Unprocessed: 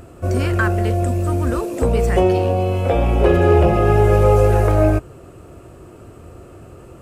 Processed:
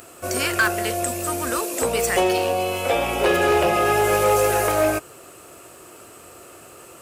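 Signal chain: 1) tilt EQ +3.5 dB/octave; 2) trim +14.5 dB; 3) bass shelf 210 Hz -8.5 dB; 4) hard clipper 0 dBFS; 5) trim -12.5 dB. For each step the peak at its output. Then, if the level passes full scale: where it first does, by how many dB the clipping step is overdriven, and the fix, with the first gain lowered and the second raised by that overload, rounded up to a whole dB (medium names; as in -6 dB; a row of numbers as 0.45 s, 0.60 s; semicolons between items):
-6.0 dBFS, +8.5 dBFS, +8.0 dBFS, 0.0 dBFS, -12.5 dBFS; step 2, 8.0 dB; step 2 +6.5 dB, step 5 -4.5 dB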